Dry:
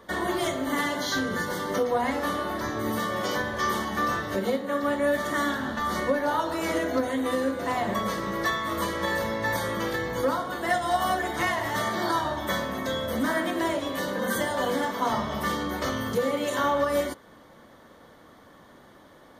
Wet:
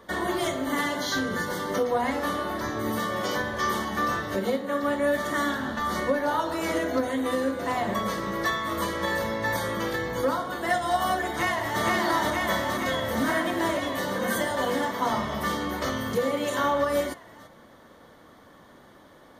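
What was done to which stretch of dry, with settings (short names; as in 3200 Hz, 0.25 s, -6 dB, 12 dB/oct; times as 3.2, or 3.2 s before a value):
11.29–11.83 echo throw 0.47 s, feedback 80%, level -1 dB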